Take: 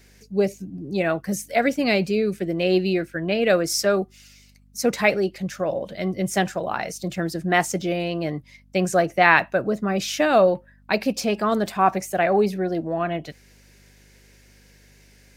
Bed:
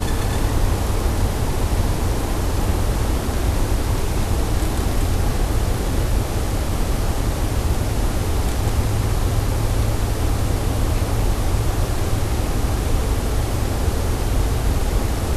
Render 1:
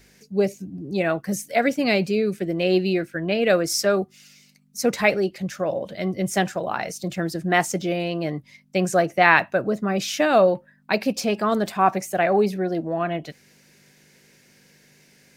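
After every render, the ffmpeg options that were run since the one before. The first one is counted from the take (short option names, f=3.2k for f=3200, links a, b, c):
-af "bandreject=f=50:t=h:w=4,bandreject=f=100:t=h:w=4"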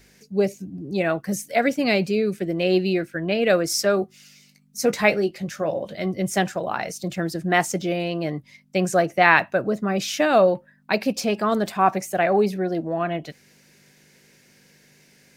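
-filter_complex "[0:a]asettb=1/sr,asplit=3[a][b][c];[a]atrim=end=3.974[d];[b]atrim=start=3.97:end=6.06,asetpts=PTS-STARTPTS,afade=t=in:d=0.004:c=qsin,afade=t=out:st=2.086:d=0.004:c=qsin,asplit=2[e][f];[f]adelay=19,volume=-10dB[g];[e][g]amix=inputs=2:normalize=0,atrim=end_sample=92169[h];[c]atrim=start=6.056[i];[d][h]acrossfade=d=0.004:c1=hsin:c2=qsin[j];[j][i]acrossfade=d=0.004:c1=qsin:c2=hsin"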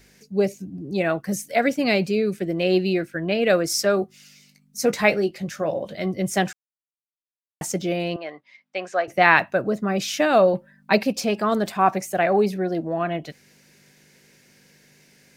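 -filter_complex "[0:a]asettb=1/sr,asplit=3[a][b][c];[a]atrim=end=8.164[d];[b]atrim=start=8.16:end=9.08,asetpts=PTS-STARTPTS,afade=t=in:d=0.004:c=qsin,afade=t=out:st=0.916:d=0.004:c=qsin,highpass=670,lowpass=3.2k[e];[c]atrim=start=9.076[f];[d][e]acrossfade=d=0.004:c1=hsin:c2=qsin[g];[g][f]acrossfade=d=0.004:c1=qsin:c2=hsin,asettb=1/sr,asplit=3[h][i][j];[h]atrim=end=10.534[k];[i]atrim=start=10.53:end=11.03,asetpts=PTS-STARTPTS,afade=t=in:d=0.004:c=qsin,afade=t=out:st=0.496:d=0.004:c=qsin,aecho=1:1:5.1:0.96,atrim=end_sample=22050[l];[j]atrim=start=11.026[m];[k][l]acrossfade=d=0.004:c1=hsin:c2=qsin[n];[n][m]acrossfade=d=0.004:c1=qsin:c2=hsin,asplit=3[o][p][q];[o]atrim=end=6.53,asetpts=PTS-STARTPTS,afade=t=out:st=6.526:d=0.004:c=hsin[r];[p]atrim=start=6.53:end=7.61,asetpts=PTS-STARTPTS,volume=0[s];[q]atrim=start=7.61,asetpts=PTS-STARTPTS,afade=t=in:d=0.004:c=hsin[t];[r][s][t]concat=n=3:v=0:a=1"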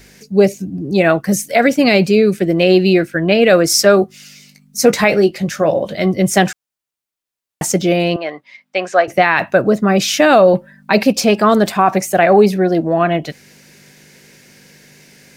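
-af "alimiter=level_in=10.5dB:limit=-1dB:release=50:level=0:latency=1"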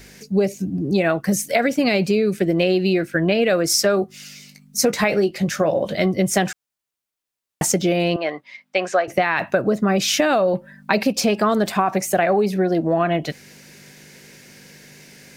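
-af "acompressor=threshold=-15dB:ratio=6"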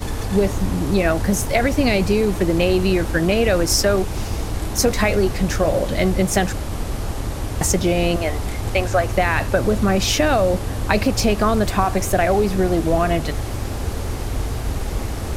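-filter_complex "[1:a]volume=-4.5dB[a];[0:a][a]amix=inputs=2:normalize=0"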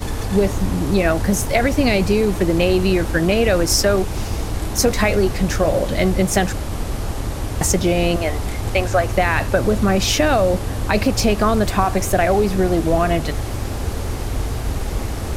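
-af "volume=1dB,alimiter=limit=-3dB:level=0:latency=1"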